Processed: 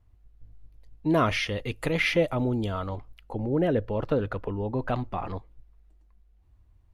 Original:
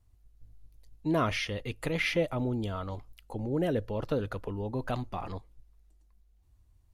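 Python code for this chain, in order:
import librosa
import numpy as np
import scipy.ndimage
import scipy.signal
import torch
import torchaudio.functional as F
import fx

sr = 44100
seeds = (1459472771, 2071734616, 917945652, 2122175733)

y = fx.bass_treble(x, sr, bass_db=-1, treble_db=fx.steps((0.0, -14.0), (1.09, -3.0), (2.88, -14.0)))
y = F.gain(torch.from_numpy(y), 5.0).numpy()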